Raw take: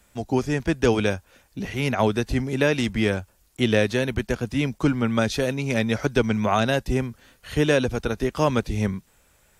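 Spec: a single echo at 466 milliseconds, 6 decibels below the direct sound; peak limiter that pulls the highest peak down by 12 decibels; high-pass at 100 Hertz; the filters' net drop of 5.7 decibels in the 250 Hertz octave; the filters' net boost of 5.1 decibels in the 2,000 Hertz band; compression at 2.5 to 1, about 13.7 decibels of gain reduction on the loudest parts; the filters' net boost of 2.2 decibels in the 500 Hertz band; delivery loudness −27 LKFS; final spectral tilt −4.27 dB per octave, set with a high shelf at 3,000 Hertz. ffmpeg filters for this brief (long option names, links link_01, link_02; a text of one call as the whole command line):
ffmpeg -i in.wav -af "highpass=100,equalizer=frequency=250:width_type=o:gain=-8.5,equalizer=frequency=500:width_type=o:gain=4.5,equalizer=frequency=2000:width_type=o:gain=4,highshelf=frequency=3000:gain=6.5,acompressor=threshold=-35dB:ratio=2.5,alimiter=level_in=4dB:limit=-24dB:level=0:latency=1,volume=-4dB,aecho=1:1:466:0.501,volume=11dB" out.wav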